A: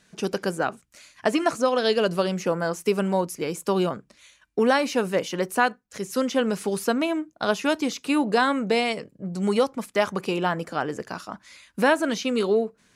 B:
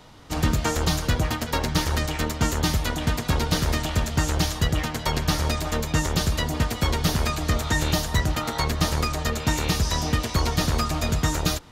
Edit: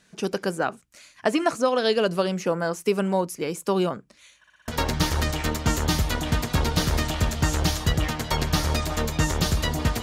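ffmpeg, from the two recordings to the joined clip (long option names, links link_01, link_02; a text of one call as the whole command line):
ffmpeg -i cue0.wav -i cue1.wav -filter_complex "[0:a]apad=whole_dur=10.02,atrim=end=10.02,asplit=5[link_01][link_02][link_03][link_04][link_05];[link_01]atrim=end=4.442[link_06];[link_02]atrim=start=4.378:end=4.442[link_07];[link_03]atrim=start=4.378:end=4.442[link_08];[link_04]atrim=start=4.378:end=4.442[link_09];[link_05]atrim=start=4.378:end=4.442[link_10];[1:a]atrim=start=1.428:end=6.77[link_11];[link_06][link_07]acrossfade=duration=0.004:curve1=hsin:curve2=hsin[link_12];[link_12][link_08]acrossfade=duration=0.004:curve1=hsin:curve2=hsin[link_13];[link_13][link_09]acrossfade=duration=0.004:curve1=hsin:curve2=hsin[link_14];[link_14][link_10]acrossfade=duration=0.004:curve1=hsin:curve2=hsin[link_15];[link_15][link_11]acrossfade=duration=0.004:curve1=hsin:curve2=hsin" out.wav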